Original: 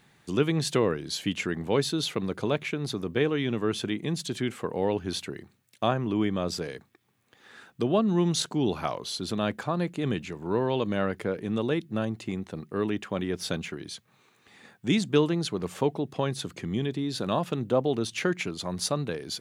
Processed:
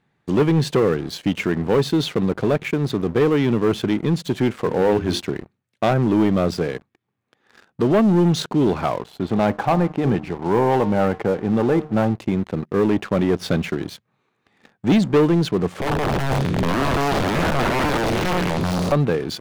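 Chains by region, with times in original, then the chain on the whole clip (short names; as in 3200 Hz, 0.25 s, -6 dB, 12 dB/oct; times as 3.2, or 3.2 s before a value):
4.58–5.22 high shelf 3900 Hz +6 dB + notches 50/100/150/200/250/300/350/400/450 Hz
9–12.15 LPF 2800 Hz + bell 810 Hz +11.5 dB 0.37 oct + de-hum 152.3 Hz, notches 8
15.8–18.92 time blur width 0.29 s + low shelf 220 Hz +8 dB + wrapped overs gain 26.5 dB
whole clip: LPF 1500 Hz 6 dB/oct; vocal rider within 3 dB 2 s; sample leveller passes 3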